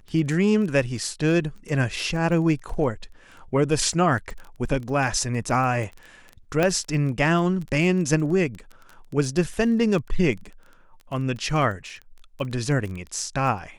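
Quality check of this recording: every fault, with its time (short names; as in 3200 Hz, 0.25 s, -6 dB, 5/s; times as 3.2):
crackle 13/s -31 dBFS
6.63 pop -8 dBFS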